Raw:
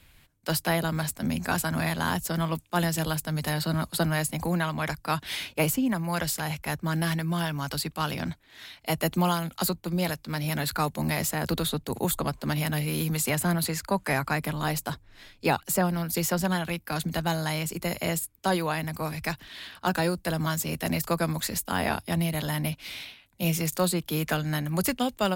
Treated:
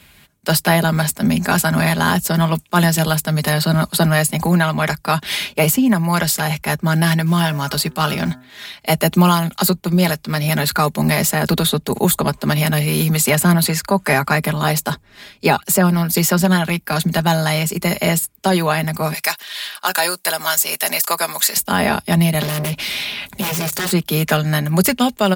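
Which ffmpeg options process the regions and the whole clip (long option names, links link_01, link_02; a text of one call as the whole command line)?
ffmpeg -i in.wav -filter_complex "[0:a]asettb=1/sr,asplit=3[link_01][link_02][link_03];[link_01]atrim=end=7.264[link_04];[link_02]atrim=start=7.26:end=8.65,asetpts=PTS-STARTPTS,afade=type=in:duration=0.004:curve=qsin,afade=type=out:start_time=1.386:duration=0.004:curve=qsin,bandreject=frequency=126.6:width_type=h:width=4,bandreject=frequency=253.2:width_type=h:width=4,bandreject=frequency=379.8:width_type=h:width=4,bandreject=frequency=506.4:width_type=h:width=4,bandreject=frequency=633:width_type=h:width=4,bandreject=frequency=759.6:width_type=h:width=4,bandreject=frequency=886.2:width_type=h:width=4,bandreject=frequency=1012.8:width_type=h:width=4,bandreject=frequency=1139.4:width_type=h:width=4,bandreject=frequency=1266:width_type=h:width=4,bandreject=frequency=1392.6:width_type=h:width=4,bandreject=frequency=1519.2:width_type=h:width=4,bandreject=frequency=1645.8:width_type=h:width=4,bandreject=frequency=1772.4:width_type=h:width=4,acrusher=bits=7:mode=log:mix=0:aa=0.000001[link_05];[link_03]atrim=start=8.646[link_06];[link_04][link_05]acrossfade=duration=0.004:curve1=hsin:curve2=qsin[link_07];[link_07][link_06]acrossfade=duration=0.004:curve1=qsin:curve2=hsin,asettb=1/sr,asplit=3[link_08][link_09][link_10];[link_08]atrim=end=19.144[link_11];[link_09]atrim=start=19.14:end=21.57,asetpts=PTS-STARTPTS,afade=type=in:duration=0.004:curve=qsin,afade=type=out:start_time=2.426:duration=0.004:curve=qsin,highpass=630,highshelf=frequency=4800:gain=9.5[link_12];[link_10]atrim=start=21.566[link_13];[link_11][link_12]acrossfade=duration=0.004:curve1=hsin:curve2=qsin[link_14];[link_14][link_13]acrossfade=duration=0.004:curve1=qsin:curve2=hsin,asettb=1/sr,asplit=3[link_15][link_16][link_17];[link_15]atrim=end=22.424[link_18];[link_16]atrim=start=22.42:end=23.92,asetpts=PTS-STARTPTS,afade=type=in:duration=0.004:curve=qsin,afade=type=out:start_time=1.496:duration=0.004:curve=qsin,aeval=exprs='0.224*sin(PI/2*5.62*val(0)/0.224)':channel_layout=same,acompressor=threshold=-33dB:ratio=6:attack=3.2:release=140:knee=1:detection=peak[link_19];[link_17]atrim=start=23.916[link_20];[link_18][link_19]acrossfade=duration=0.004:curve1=hsin:curve2=qsin[link_21];[link_21][link_20]acrossfade=duration=0.004:curve1=qsin:curve2=hsin,highpass=68,aecho=1:1:4.9:0.47,alimiter=level_in=13dB:limit=-1dB:release=50:level=0:latency=1,volume=-2.5dB" out.wav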